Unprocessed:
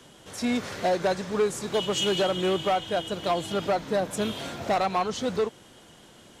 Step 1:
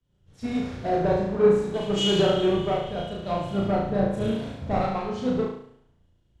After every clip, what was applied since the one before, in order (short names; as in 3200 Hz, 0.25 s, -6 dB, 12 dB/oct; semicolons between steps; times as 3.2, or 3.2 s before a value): RIAA curve playback; flutter echo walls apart 6.1 m, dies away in 1 s; three-band expander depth 100%; gain -5 dB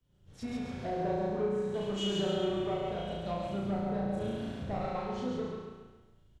compressor 2:1, threshold -42 dBFS, peak gain reduction 15.5 dB; on a send: feedback echo 0.137 s, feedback 42%, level -3.5 dB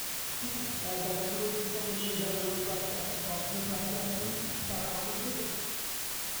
flange 1.8 Hz, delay 5.5 ms, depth 5.2 ms, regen -46%; requantised 6-bit, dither triangular